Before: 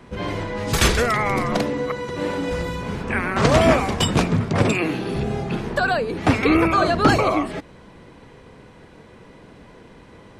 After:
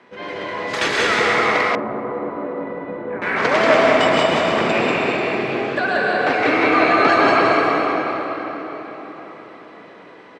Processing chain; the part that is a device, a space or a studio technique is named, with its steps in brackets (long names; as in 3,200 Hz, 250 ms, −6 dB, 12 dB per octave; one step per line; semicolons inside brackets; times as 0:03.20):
station announcement (band-pass filter 350–4,600 Hz; parametric band 1,900 Hz +4 dB 0.53 octaves; loudspeakers that aren't time-aligned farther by 53 metres −12 dB, 64 metres −3 dB; convolution reverb RT60 4.5 s, pre-delay 104 ms, DRR −3 dB)
0:01.75–0:03.22: Bessel low-pass filter 650 Hz, order 2
level −2 dB